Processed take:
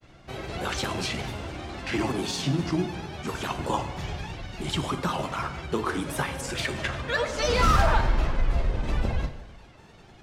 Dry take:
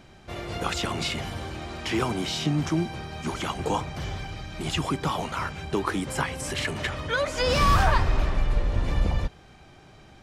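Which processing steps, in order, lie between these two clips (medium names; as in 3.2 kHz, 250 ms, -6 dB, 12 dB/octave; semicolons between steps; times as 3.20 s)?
granulator, spray 11 ms, pitch spread up and down by 3 st; plate-style reverb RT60 1.1 s, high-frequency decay 0.8×, DRR 8 dB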